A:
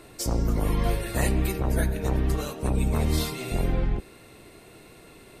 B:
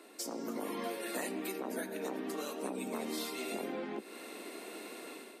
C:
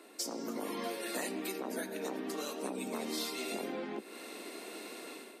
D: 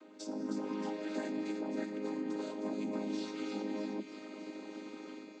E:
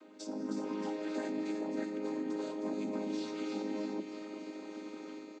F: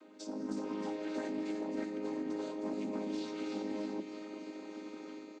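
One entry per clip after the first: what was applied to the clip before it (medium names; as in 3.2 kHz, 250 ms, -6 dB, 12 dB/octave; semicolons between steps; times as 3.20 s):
level rider gain up to 11 dB; steep high-pass 220 Hz 48 dB/octave; compression 4:1, threshold -31 dBFS, peak gain reduction 14 dB; trim -6.5 dB
dynamic bell 5.1 kHz, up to +5 dB, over -57 dBFS, Q 1.1
vocoder on a held chord major triad, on G#3; feedback echo behind a high-pass 313 ms, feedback 69%, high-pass 2.2 kHz, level -6.5 dB; on a send at -21 dB: reverberation RT60 1.1 s, pre-delay 3 ms; on the sum: trim +2 dB
delay 373 ms -11 dB
loudspeaker Doppler distortion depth 0.16 ms; trim -1 dB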